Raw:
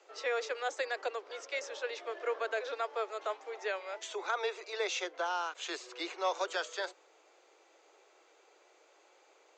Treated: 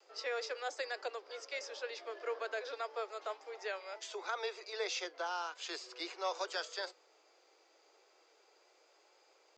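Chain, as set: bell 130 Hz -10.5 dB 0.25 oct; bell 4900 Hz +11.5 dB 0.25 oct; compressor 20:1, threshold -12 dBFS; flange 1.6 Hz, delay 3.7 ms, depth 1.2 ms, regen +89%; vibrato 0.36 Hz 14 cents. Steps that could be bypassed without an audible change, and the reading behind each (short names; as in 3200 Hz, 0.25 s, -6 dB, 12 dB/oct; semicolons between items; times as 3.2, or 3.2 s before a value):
bell 130 Hz: input band starts at 290 Hz; compressor, threshold -12 dBFS: input peak -19.5 dBFS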